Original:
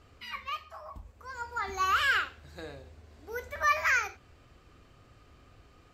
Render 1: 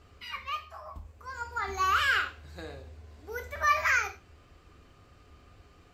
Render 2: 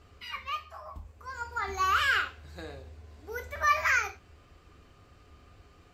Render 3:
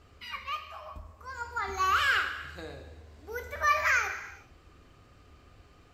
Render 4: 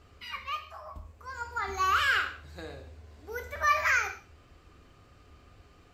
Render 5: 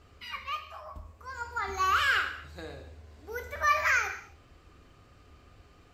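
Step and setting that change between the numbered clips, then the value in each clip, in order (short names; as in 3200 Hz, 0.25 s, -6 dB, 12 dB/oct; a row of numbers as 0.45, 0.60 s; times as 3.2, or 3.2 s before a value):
non-linear reverb, gate: 120, 80, 440, 200, 290 ms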